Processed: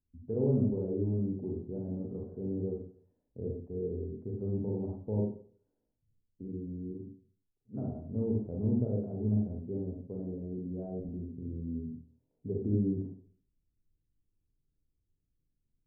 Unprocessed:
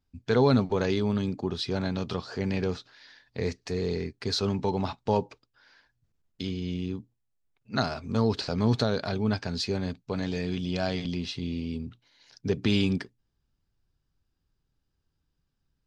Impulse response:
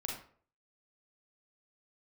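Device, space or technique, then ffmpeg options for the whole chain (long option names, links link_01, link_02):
next room: -filter_complex "[0:a]lowpass=frequency=490:width=0.5412,lowpass=frequency=490:width=1.3066[link_01];[1:a]atrim=start_sample=2205[link_02];[link_01][link_02]afir=irnorm=-1:irlink=0,volume=-6dB"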